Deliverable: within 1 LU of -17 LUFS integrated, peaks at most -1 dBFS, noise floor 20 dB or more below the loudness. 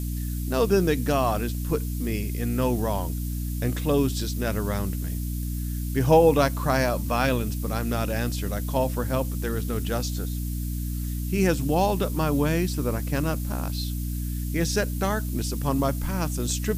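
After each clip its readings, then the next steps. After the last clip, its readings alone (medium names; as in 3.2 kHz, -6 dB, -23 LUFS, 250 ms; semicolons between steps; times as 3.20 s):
hum 60 Hz; highest harmonic 300 Hz; hum level -27 dBFS; noise floor -29 dBFS; noise floor target -46 dBFS; loudness -26.0 LUFS; peak level -7.0 dBFS; loudness target -17.0 LUFS
-> hum notches 60/120/180/240/300 Hz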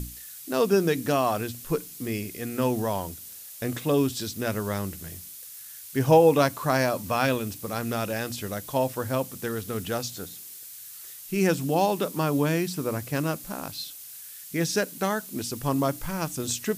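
hum not found; noise floor -43 dBFS; noise floor target -47 dBFS
-> noise print and reduce 6 dB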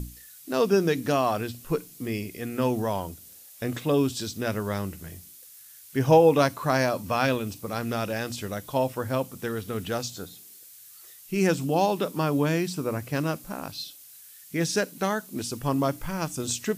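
noise floor -49 dBFS; loudness -27.0 LUFS; peak level -8.0 dBFS; loudness target -17.0 LUFS
-> trim +10 dB; peak limiter -1 dBFS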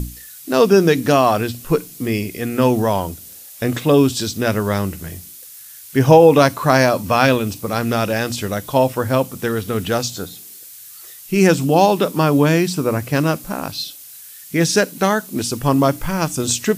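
loudness -17.5 LUFS; peak level -1.0 dBFS; noise floor -39 dBFS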